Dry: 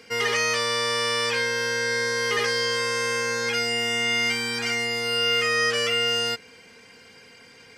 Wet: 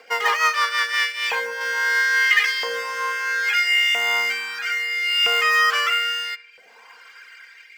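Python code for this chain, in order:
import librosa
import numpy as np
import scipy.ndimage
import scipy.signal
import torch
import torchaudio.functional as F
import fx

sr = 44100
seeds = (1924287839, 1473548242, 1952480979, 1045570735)

p1 = fx.high_shelf(x, sr, hz=4500.0, db=-11.5)
p2 = fx.rotary_switch(p1, sr, hz=6.0, then_hz=0.6, switch_at_s=0.69)
p3 = fx.high_shelf(p2, sr, hz=2100.0, db=-4.5, at=(1.12, 1.61))
p4 = fx.sample_hold(p3, sr, seeds[0], rate_hz=5000.0, jitter_pct=0)
p5 = p3 + (p4 * 10.0 ** (-12.0 / 20.0))
p6 = fx.dereverb_blind(p5, sr, rt60_s=0.56)
p7 = fx.filter_lfo_highpass(p6, sr, shape='saw_up', hz=0.76, low_hz=740.0, high_hz=2500.0, q=2.6)
p8 = p7 + fx.echo_filtered(p7, sr, ms=70, feedback_pct=63, hz=2500.0, wet_db=-16.5, dry=0)
y = p8 * 10.0 ** (6.5 / 20.0)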